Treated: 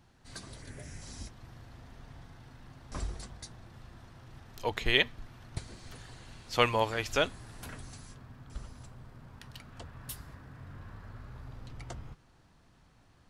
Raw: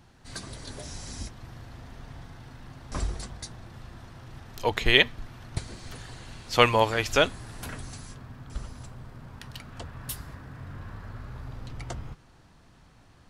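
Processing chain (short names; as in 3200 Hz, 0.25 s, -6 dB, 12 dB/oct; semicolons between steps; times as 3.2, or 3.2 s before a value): 0.62–1.02 graphic EQ 125/1000/2000/4000 Hz +5/-7/+9/-11 dB; gain -6.5 dB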